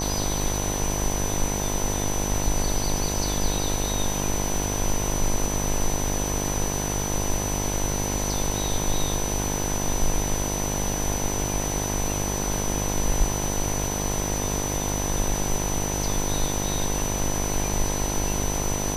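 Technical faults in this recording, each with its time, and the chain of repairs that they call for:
buzz 50 Hz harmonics 21 -29 dBFS
tone 6000 Hz -30 dBFS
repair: notch 6000 Hz, Q 30; de-hum 50 Hz, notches 21

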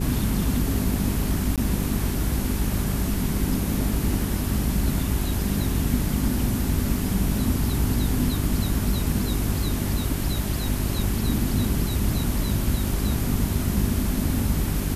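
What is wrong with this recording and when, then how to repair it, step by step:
hum 50 Hz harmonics 8 -28 dBFS
1.56–1.58 gap 17 ms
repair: de-hum 50 Hz, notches 8; interpolate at 1.56, 17 ms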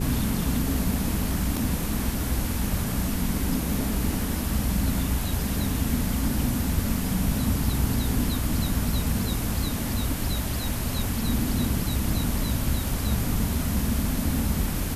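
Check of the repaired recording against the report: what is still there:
none

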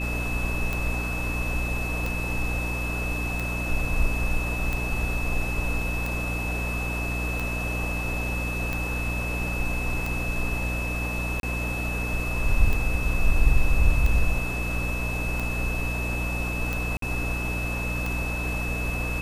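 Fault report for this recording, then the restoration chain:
hum 60 Hz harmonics 5 -30 dBFS
tick 45 rpm
tone 2600 Hz -31 dBFS
11.4–11.43 gap 32 ms
16.97–17.02 gap 53 ms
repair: de-click; notch 2600 Hz, Q 30; de-hum 60 Hz, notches 5; interpolate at 11.4, 32 ms; interpolate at 16.97, 53 ms

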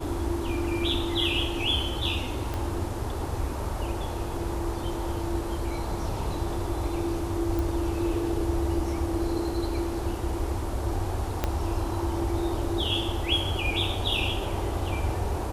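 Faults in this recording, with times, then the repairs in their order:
2.54 pop
7.59 pop
11.44 pop -11 dBFS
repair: de-click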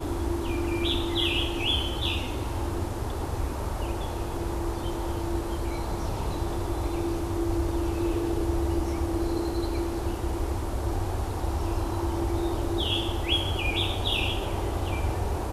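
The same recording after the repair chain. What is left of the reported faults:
2.54 pop
11.44 pop

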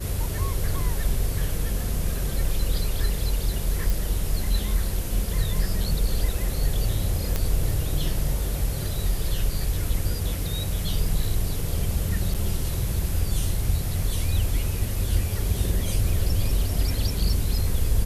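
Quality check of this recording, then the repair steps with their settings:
3.9 pop
7.36 pop -10 dBFS
12.34–12.35 gap 7.2 ms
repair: de-click; interpolate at 12.34, 7.2 ms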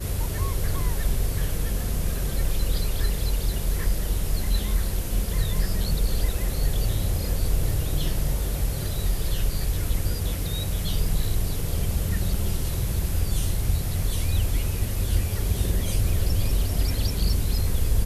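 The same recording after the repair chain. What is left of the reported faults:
none

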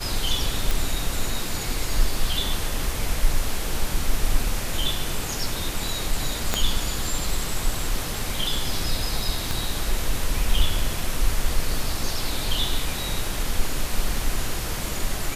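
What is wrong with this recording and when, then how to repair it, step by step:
0.71 pop
6.54 pop -6 dBFS
9.51 pop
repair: de-click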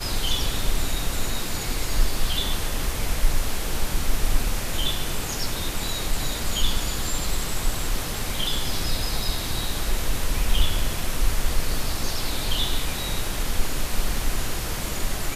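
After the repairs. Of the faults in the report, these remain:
6.54 pop
9.51 pop

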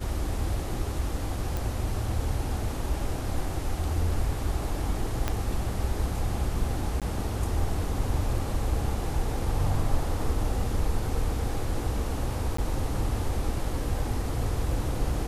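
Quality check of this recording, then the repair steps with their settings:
1.57 pop
5.28 pop -12 dBFS
7–7.02 gap 17 ms
12.57–12.58 gap 14 ms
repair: de-click; interpolate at 7, 17 ms; interpolate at 12.57, 14 ms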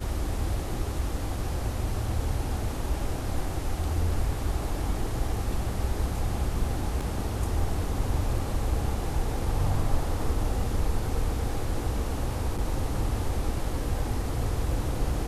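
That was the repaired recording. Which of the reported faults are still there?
5.28 pop

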